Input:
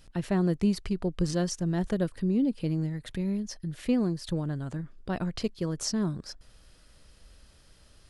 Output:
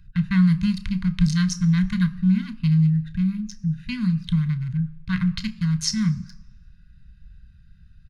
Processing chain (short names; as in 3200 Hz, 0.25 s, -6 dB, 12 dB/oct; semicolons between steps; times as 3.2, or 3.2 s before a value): Wiener smoothing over 41 samples; inverse Chebyshev band-stop 290–750 Hz, stop band 40 dB; doubler 32 ms -14 dB; reverb RT60 1.1 s, pre-delay 3 ms, DRR 11.5 dB; gain +6.5 dB